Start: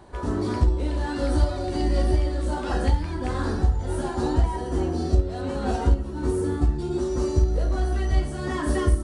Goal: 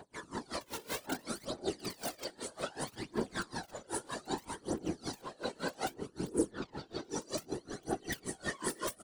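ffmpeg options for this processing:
-filter_complex "[0:a]asettb=1/sr,asplit=3[a][b][c];[a]atrim=end=0.614[d];[b]atrim=start=0.61:end=1.22,asetpts=PTS-STARTPTS,afade=t=in:d=0.004:c=qsin,afade=t=out:st=0.606:d=0.004:c=qsin,tiltshelf=f=1.4k:g=8.5[e];[c]atrim=start=1.216[f];[d][e]acrossfade=d=0.004:c1=hsin:c2=qsin[g];[g][f]acrossfade=d=0.004:c1=qsin:c2=hsin,asplit=2[h][i];[i]aeval=exprs='(mod(5.31*val(0)+1,2)-1)/5.31':c=same,volume=-8dB[j];[h][j]amix=inputs=2:normalize=0,acompressor=threshold=-17dB:ratio=6,highpass=f=150:w=0.5412,highpass=f=150:w=1.3066,highshelf=f=2.5k:g=11.5,aphaser=in_gain=1:out_gain=1:delay=2.3:decay=0.72:speed=0.63:type=triangular,asettb=1/sr,asplit=3[k][l][m];[k]atrim=end=6.514[n];[l]atrim=start=6.51:end=7.1,asetpts=PTS-STARTPTS,afade=t=in:d=0.004:c=qsin,afade=t=out:st=0.586:d=0.004:c=qsin,lowpass=f=5k:w=0.5412,lowpass=f=5k:w=1.3066[o];[m]atrim=start=7.096[p];[n][o]acrossfade=d=0.004:c1=hsin:c2=qsin[q];[q][p]acrossfade=d=0.004:c1=qsin:c2=hsin,asplit=2[r][s];[s]adelay=1176,lowpass=f=2.6k:p=1,volume=-10dB,asplit=2[t][u];[u]adelay=1176,lowpass=f=2.6k:p=1,volume=0.47,asplit=2[v][w];[w]adelay=1176,lowpass=f=2.6k:p=1,volume=0.47,asplit=2[x][y];[y]adelay=1176,lowpass=f=2.6k:p=1,volume=0.47,asplit=2[z][aa];[aa]adelay=1176,lowpass=f=2.6k:p=1,volume=0.47[ab];[t][v][x][z][ab]amix=inputs=5:normalize=0[ac];[r][ac]amix=inputs=2:normalize=0,afftfilt=real='hypot(re,im)*cos(2*PI*random(0))':imag='hypot(re,im)*sin(2*PI*random(1))':win_size=512:overlap=0.75,aeval=exprs='val(0)*pow(10,-27*(0.5-0.5*cos(2*PI*5.3*n/s))/20)':c=same,volume=-4dB"

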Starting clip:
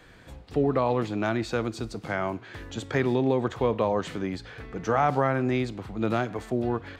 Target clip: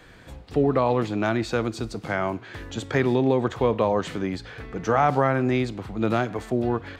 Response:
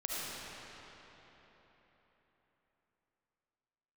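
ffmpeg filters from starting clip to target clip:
-af "volume=3dB"

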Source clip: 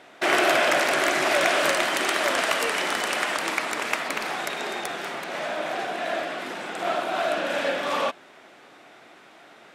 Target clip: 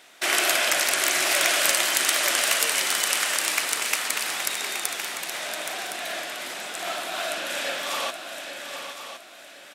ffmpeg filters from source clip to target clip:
-filter_complex "[0:a]asplit=2[a][b];[b]aecho=0:1:822:0.355[c];[a][c]amix=inputs=2:normalize=0,crystalizer=i=8.5:c=0,asplit=2[d][e];[e]aecho=0:1:1064|2128|3192:0.299|0.0866|0.0251[f];[d][f]amix=inputs=2:normalize=0,volume=-10dB"

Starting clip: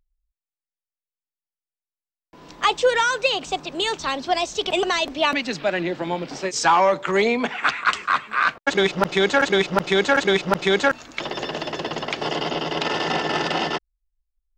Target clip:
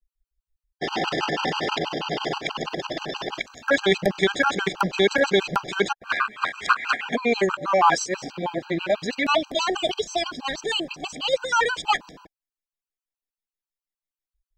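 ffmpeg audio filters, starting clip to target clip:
-af "areverse,afftfilt=real='re*gt(sin(2*PI*6.2*pts/sr)*(1-2*mod(floor(b*sr/1024/800),2)),0)':imag='im*gt(sin(2*PI*6.2*pts/sr)*(1-2*mod(floor(b*sr/1024/800),2)),0)':win_size=1024:overlap=0.75,volume=1dB"

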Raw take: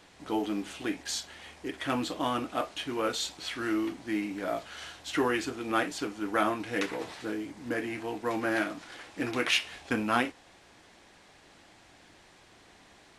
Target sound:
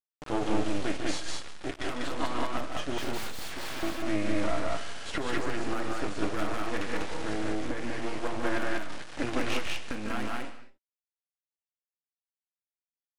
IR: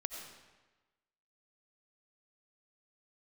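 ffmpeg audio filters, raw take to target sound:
-filter_complex "[0:a]asettb=1/sr,asplit=3[a][b][c];[a]atrim=end=5.384[d];[b]atrim=start=5.38:end=6,asetpts=PTS-STARTPTS,afade=t=in:d=0.004:c=qsin,afade=t=out:st=0.616:d=0.004:c=qsin,equalizer=f=3.4k:w=1.6:g=-11[e];[c]atrim=start=5.996[f];[d][e]acrossfade=d=0.004:c1=hsin:c2=qsin[g];[g][f]acrossfade=d=0.004:c1=qsin:c2=hsin,acrusher=bits=4:dc=4:mix=0:aa=0.000001,aresample=22050,aresample=44100,alimiter=limit=-20dB:level=0:latency=1:release=284,asettb=1/sr,asplit=3[h][i][j];[h]atrim=end=2.984[k];[i]atrim=start=2.98:end=3.83,asetpts=PTS-STARTPTS,afade=t=in:d=0.004:c=qsin,afade=t=out:st=0.846:d=0.004:c=qsin,aeval=exprs='(mod(47.3*val(0)+1,2)-1)/47.3':c=same[l];[j]atrim=start=3.826[m];[k][l]acrossfade=d=0.004:c1=hsin:c2=qsin[n];[n][m]acrossfade=d=0.004:c1=qsin:c2=hsin,asettb=1/sr,asplit=3[o][p][q];[o]atrim=end=7.574[r];[p]atrim=start=7.57:end=8.24,asetpts=PTS-STARTPTS,afade=t=in:d=0.004:c=qsin,afade=t=out:st=0.666:d=0.004:c=qsin,acompressor=threshold=-35dB:ratio=6[s];[q]atrim=start=8.236[t];[r][s]acrossfade=d=0.004:c1=hsin:c2=qsin[u];[u][t]acrossfade=d=0.004:c1=qsin:c2=hsin,aecho=1:1:148.7|195.3:0.447|0.794,asplit=2[v][w];[1:a]atrim=start_sample=2205,afade=t=out:st=0.33:d=0.01,atrim=end_sample=14994[x];[w][x]afir=irnorm=-1:irlink=0,volume=-7dB[y];[v][y]amix=inputs=2:normalize=0,aeval=exprs='max(val(0),0)':c=same,highshelf=f=4.7k:g=-8.5,volume=2.5dB"

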